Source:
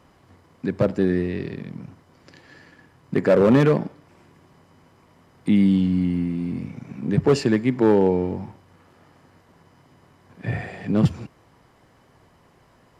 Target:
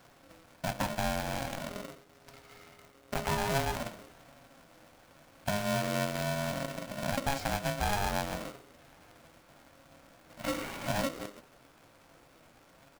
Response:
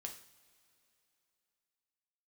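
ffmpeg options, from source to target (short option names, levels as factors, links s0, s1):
-filter_complex "[0:a]asettb=1/sr,asplit=3[s0][s1][s2];[s0]atrim=end=1.694[s3];[s1]atrim=start=1.69:end=3.75,asetpts=PTS-STARTPTS,afade=t=in:d=0.004:c=qsin,afade=t=out:st=2.056:d=0.004:c=qsin,aeval=exprs='if(lt(val(0),0),0.447*val(0),val(0))':c=same[s4];[s2]atrim=start=3.746[s5];[s3][s4]acrossfade=d=0.004:c1=hsin:c2=qsin[s6];[s6][s5]acrossfade=d=0.004:c1=qsin:c2=hsin,equalizer=f=270:t=o:w=0.37:g=4,asplit=4[s7][s8][s9][s10];[s8]adelay=109,afreqshift=-110,volume=0.0891[s11];[s9]adelay=218,afreqshift=-220,volume=0.0394[s12];[s10]adelay=327,afreqshift=-330,volume=0.0172[s13];[s7][s11][s12][s13]amix=inputs=4:normalize=0,acrusher=bits=2:mode=log:mix=0:aa=0.000001,flanger=delay=6.8:depth=9.4:regen=52:speed=0.46:shape=sinusoidal,acompressor=threshold=0.0282:ratio=3,bandreject=f=50:t=h:w=6,bandreject=f=100:t=h:w=6,bandreject=f=150:t=h:w=6,bandreject=f=200:t=h:w=6,bandreject=f=250:t=h:w=6,aeval=exprs='val(0)*sgn(sin(2*PI*410*n/s))':c=same"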